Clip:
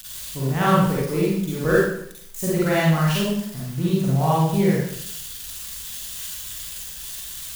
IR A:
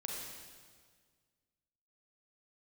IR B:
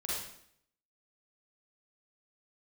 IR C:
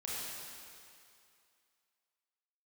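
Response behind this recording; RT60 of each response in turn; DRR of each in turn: B; 1.7 s, 0.65 s, 2.4 s; -2.0 dB, -7.0 dB, -7.0 dB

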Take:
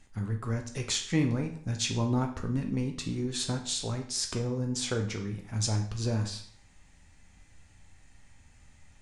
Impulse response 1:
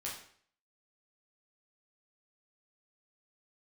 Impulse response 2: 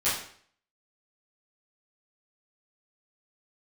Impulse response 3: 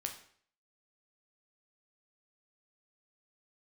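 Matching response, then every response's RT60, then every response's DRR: 3; 0.55 s, 0.55 s, 0.55 s; -5.0 dB, -13.0 dB, 3.5 dB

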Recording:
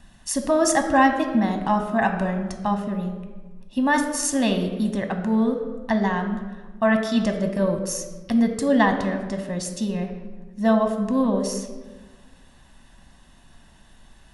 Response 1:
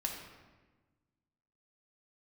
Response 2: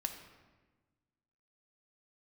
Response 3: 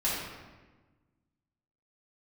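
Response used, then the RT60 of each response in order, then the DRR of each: 2; 1.3 s, 1.3 s, 1.3 s; 0.5 dB, 5.5 dB, -8.0 dB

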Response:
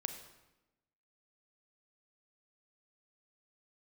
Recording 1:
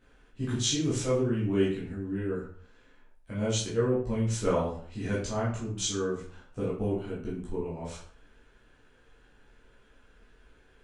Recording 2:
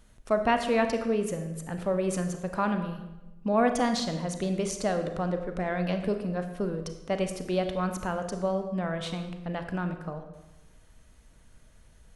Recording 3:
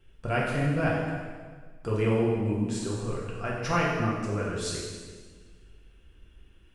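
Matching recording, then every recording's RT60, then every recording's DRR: 2; 0.50 s, 1.0 s, 1.6 s; -9.0 dB, 6.5 dB, -5.5 dB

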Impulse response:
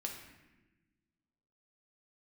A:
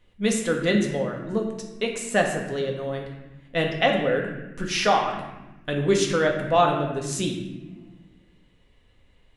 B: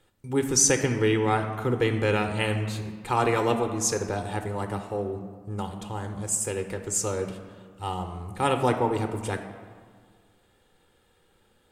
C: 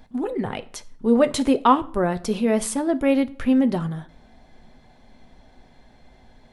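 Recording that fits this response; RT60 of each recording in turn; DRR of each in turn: A; 1.2 s, 1.8 s, 0.50 s; 1.0 dB, 6.0 dB, 9.5 dB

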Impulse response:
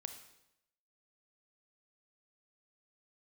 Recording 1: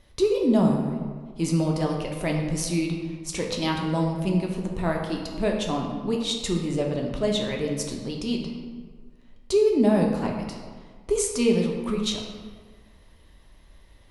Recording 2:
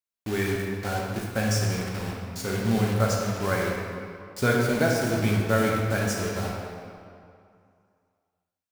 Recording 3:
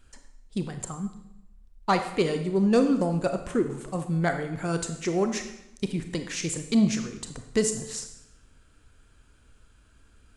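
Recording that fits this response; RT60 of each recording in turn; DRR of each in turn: 3; 1.6 s, 2.4 s, 0.85 s; 0.5 dB, -2.5 dB, 7.0 dB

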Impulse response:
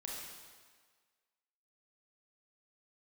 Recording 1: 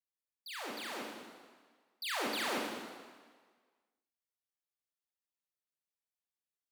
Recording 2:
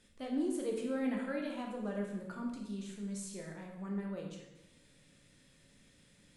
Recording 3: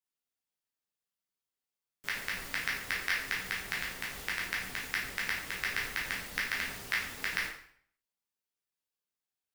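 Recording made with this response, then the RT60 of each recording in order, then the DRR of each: 1; 1.6 s, 1.0 s, 0.60 s; -3.5 dB, -0.5 dB, -5.5 dB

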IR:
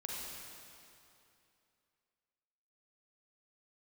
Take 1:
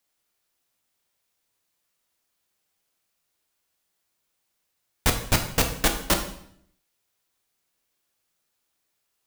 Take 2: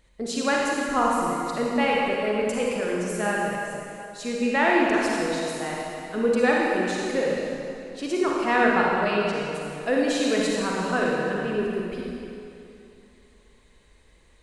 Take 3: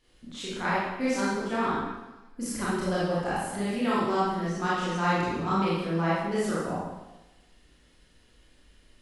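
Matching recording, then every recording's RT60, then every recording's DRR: 2; 0.65 s, 2.7 s, 1.1 s; 4.0 dB, -3.5 dB, -9.5 dB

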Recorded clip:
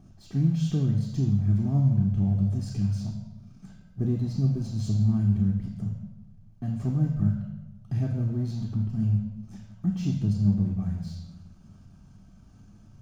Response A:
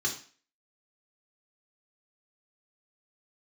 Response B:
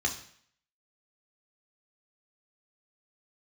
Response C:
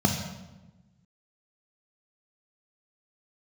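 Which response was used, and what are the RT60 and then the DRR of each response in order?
C; 0.40 s, 0.60 s, 1.1 s; -2.0 dB, 1.5 dB, 3.0 dB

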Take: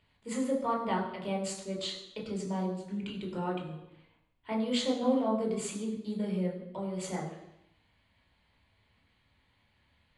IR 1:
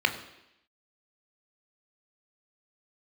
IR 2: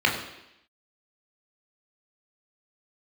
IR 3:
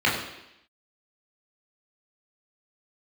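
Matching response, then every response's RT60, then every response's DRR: 2; 0.85 s, 0.85 s, 0.85 s; 6.0 dB, -1.0 dB, -5.5 dB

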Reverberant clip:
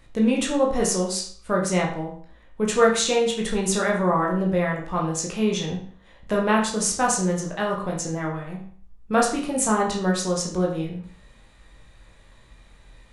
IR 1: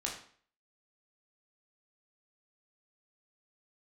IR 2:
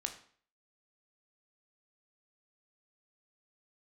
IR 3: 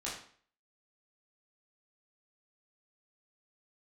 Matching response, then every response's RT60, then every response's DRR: 1; 0.50 s, 0.50 s, 0.50 s; -2.0 dB, 5.0 dB, -7.0 dB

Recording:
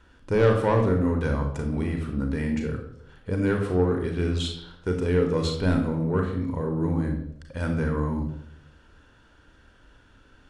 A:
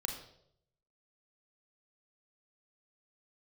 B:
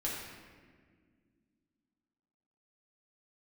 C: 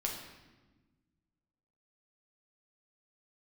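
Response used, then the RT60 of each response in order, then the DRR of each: A; 0.70 s, 1.8 s, 1.2 s; 2.5 dB, -6.0 dB, -1.0 dB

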